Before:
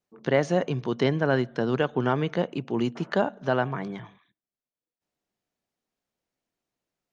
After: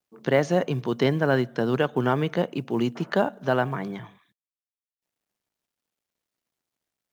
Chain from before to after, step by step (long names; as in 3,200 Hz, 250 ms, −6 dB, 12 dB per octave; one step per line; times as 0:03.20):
high-pass filter 43 Hz 24 dB per octave
log-companded quantiser 8 bits
level +1.5 dB